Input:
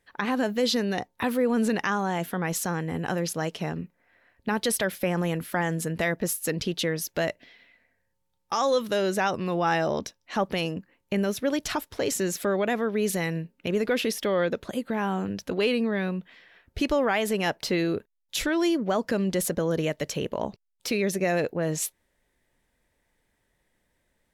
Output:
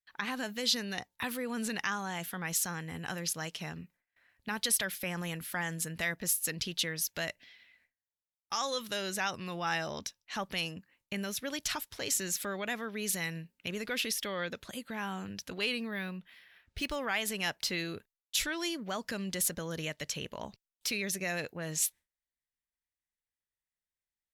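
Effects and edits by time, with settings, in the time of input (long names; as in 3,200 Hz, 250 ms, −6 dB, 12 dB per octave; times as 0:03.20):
0:15.80–0:16.96: linearly interpolated sample-rate reduction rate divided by 3×
0:19.87–0:20.29: high-shelf EQ 12,000 Hz −8.5 dB
whole clip: noise gate with hold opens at −52 dBFS; guitar amp tone stack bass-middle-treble 5-5-5; level +6 dB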